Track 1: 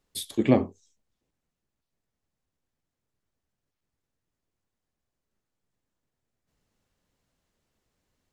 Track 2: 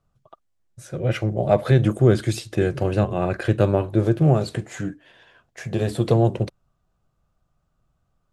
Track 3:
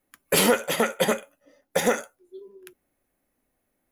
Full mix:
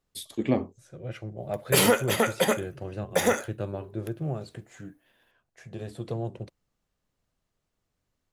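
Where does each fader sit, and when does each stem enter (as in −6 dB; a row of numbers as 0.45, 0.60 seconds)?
−4.5, −14.5, −1.0 decibels; 0.00, 0.00, 1.40 seconds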